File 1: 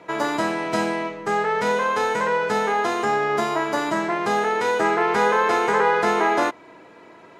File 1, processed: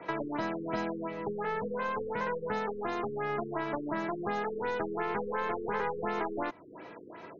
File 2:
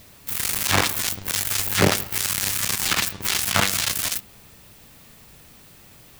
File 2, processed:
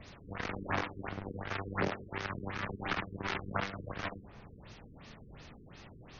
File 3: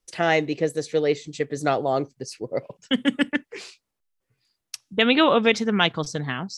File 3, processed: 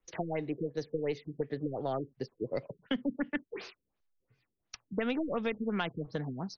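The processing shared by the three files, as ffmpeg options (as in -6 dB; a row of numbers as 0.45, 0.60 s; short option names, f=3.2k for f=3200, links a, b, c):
-filter_complex "[0:a]aeval=exprs='0.891*(cos(1*acos(clip(val(0)/0.891,-1,1)))-cos(1*PI/2))+0.0562*(cos(4*acos(clip(val(0)/0.891,-1,1)))-cos(4*PI/2))':c=same,acrossover=split=200|2100[a][b][c];[a]acompressor=threshold=-43dB:ratio=4[d];[b]acompressor=threshold=-33dB:ratio=4[e];[c]acompressor=threshold=-48dB:ratio=4[f];[d][e][f]amix=inputs=3:normalize=0,afftfilt=real='re*lt(b*sr/1024,460*pow(6800/460,0.5+0.5*sin(2*PI*2.8*pts/sr)))':imag='im*lt(b*sr/1024,460*pow(6800/460,0.5+0.5*sin(2*PI*2.8*pts/sr)))':win_size=1024:overlap=0.75"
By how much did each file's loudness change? -12.5, -17.0, -13.0 LU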